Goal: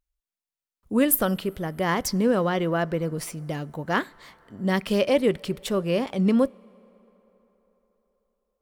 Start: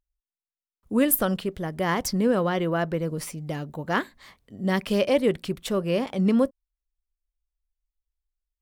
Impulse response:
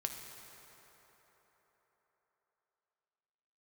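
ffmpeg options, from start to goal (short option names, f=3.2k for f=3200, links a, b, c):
-filter_complex "[0:a]asplit=2[a][b];[1:a]atrim=start_sample=2205,lowshelf=f=180:g=-10.5[c];[b][c]afir=irnorm=-1:irlink=0,volume=-19dB[d];[a][d]amix=inputs=2:normalize=0"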